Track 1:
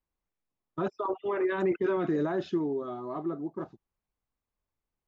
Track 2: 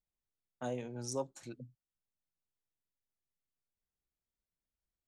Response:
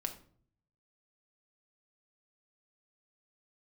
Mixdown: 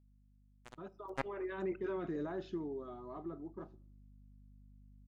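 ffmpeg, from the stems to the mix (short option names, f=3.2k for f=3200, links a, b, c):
-filter_complex "[0:a]aeval=exprs='val(0)+0.00447*(sin(2*PI*50*n/s)+sin(2*PI*2*50*n/s)/2+sin(2*PI*3*50*n/s)/3+sin(2*PI*4*50*n/s)/4+sin(2*PI*5*50*n/s)/5)':c=same,volume=-13dB,afade=t=in:st=0.91:d=0.77:silence=0.421697,asplit=2[a][b];[b]volume=-10dB[c];[1:a]aecho=1:1:4:0.64,acrusher=bits=3:mix=0:aa=0.5,volume=0.5dB,asplit=2[d][e];[e]volume=-19.5dB[f];[2:a]atrim=start_sample=2205[g];[c][f]amix=inputs=2:normalize=0[h];[h][g]afir=irnorm=-1:irlink=0[i];[a][d][i]amix=inputs=3:normalize=0"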